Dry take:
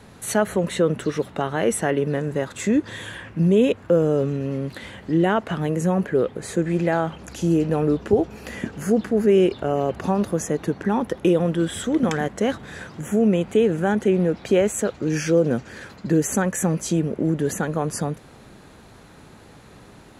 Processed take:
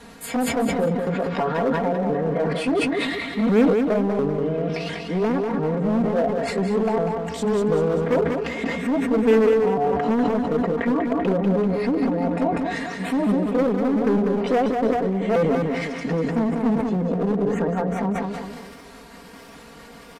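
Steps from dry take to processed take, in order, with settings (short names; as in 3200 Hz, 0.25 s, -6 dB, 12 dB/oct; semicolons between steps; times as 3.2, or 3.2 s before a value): repeated pitch sweeps +5.5 st, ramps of 0.698 s; comb 4.3 ms, depth 98%; treble ducked by the level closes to 530 Hz, closed at -17 dBFS; echo 0.201 s -15 dB; in parallel at -4 dB: wavefolder -18.5 dBFS; on the sum: low shelf 360 Hz -4.5 dB; feedback echo 0.194 s, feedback 45%, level -5.5 dB; sustainer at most 31 dB/s; gain -2.5 dB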